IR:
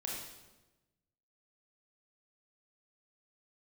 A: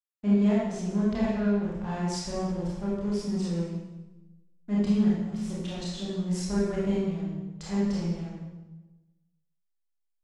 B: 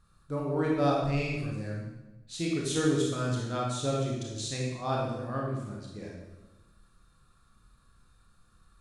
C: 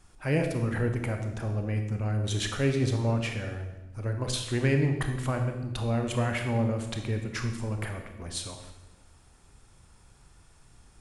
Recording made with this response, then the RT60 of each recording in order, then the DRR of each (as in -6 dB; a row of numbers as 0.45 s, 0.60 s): B; 1.1 s, 1.1 s, 1.1 s; -8.0 dB, -3.0 dB, 4.0 dB